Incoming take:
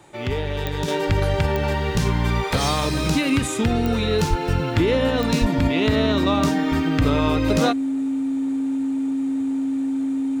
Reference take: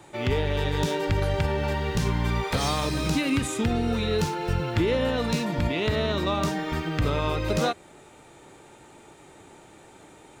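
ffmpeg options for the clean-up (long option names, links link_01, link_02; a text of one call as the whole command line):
ffmpeg -i in.wav -filter_complex "[0:a]adeclick=threshold=4,bandreject=frequency=270:width=30,asplit=3[link_01][link_02][link_03];[link_01]afade=type=out:start_time=4.29:duration=0.02[link_04];[link_02]highpass=frequency=140:width=0.5412,highpass=frequency=140:width=1.3066,afade=type=in:start_time=4.29:duration=0.02,afade=type=out:start_time=4.41:duration=0.02[link_05];[link_03]afade=type=in:start_time=4.41:duration=0.02[link_06];[link_04][link_05][link_06]amix=inputs=3:normalize=0,asplit=3[link_07][link_08][link_09];[link_07]afade=type=out:start_time=5.4:duration=0.02[link_10];[link_08]highpass=frequency=140:width=0.5412,highpass=frequency=140:width=1.3066,afade=type=in:start_time=5.4:duration=0.02,afade=type=out:start_time=5.52:duration=0.02[link_11];[link_09]afade=type=in:start_time=5.52:duration=0.02[link_12];[link_10][link_11][link_12]amix=inputs=3:normalize=0,asetnsamples=nb_out_samples=441:pad=0,asendcmd='0.88 volume volume -4.5dB',volume=0dB" out.wav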